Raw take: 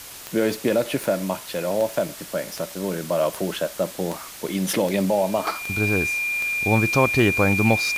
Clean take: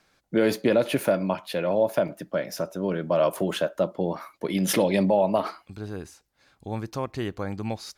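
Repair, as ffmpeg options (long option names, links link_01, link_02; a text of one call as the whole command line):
ffmpeg -i in.wav -af "adeclick=threshold=4,bandreject=frequency=2400:width=30,afwtdn=0.013,asetnsamples=nb_out_samples=441:pad=0,asendcmd='5.47 volume volume -11.5dB',volume=0dB" out.wav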